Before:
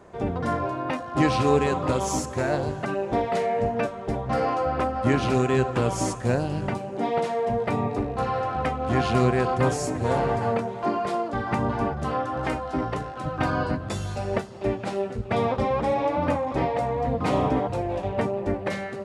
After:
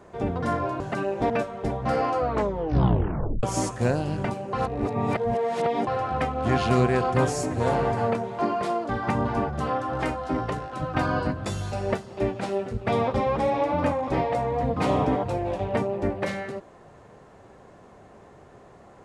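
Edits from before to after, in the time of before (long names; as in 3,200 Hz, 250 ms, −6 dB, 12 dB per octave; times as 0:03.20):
0:00.80–0:02.71: remove
0:03.21–0:03.74: remove
0:04.62: tape stop 1.25 s
0:06.97–0:08.31: reverse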